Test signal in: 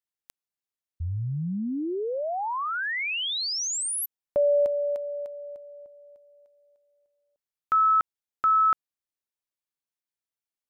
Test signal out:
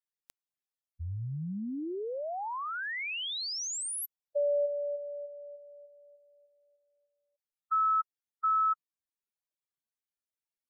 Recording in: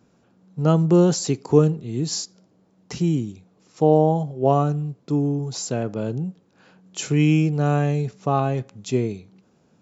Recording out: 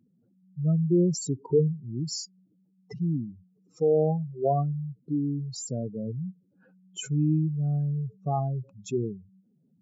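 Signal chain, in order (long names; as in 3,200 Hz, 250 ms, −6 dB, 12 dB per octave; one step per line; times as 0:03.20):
expanding power law on the bin magnitudes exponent 3.1
level −6 dB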